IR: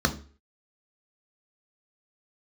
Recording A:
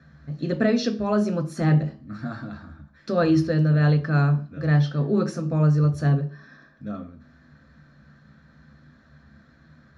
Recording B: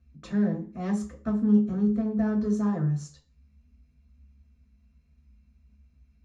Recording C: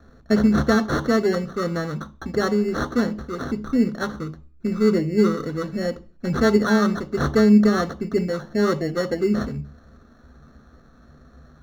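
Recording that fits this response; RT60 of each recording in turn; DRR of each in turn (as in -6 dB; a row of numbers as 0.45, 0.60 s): A; 0.40, 0.40, 0.40 s; 5.0, -1.5, 10.5 dB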